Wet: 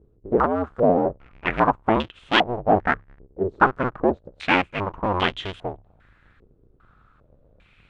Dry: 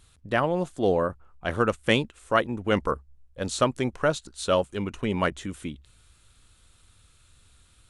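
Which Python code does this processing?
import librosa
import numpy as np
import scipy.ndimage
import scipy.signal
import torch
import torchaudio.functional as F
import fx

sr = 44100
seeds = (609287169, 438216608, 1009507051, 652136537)

y = fx.cycle_switch(x, sr, every=2, mode='inverted')
y = fx.filter_held_lowpass(y, sr, hz=2.5, low_hz=420.0, high_hz=3200.0)
y = y * 10.0 ** (1.0 / 20.0)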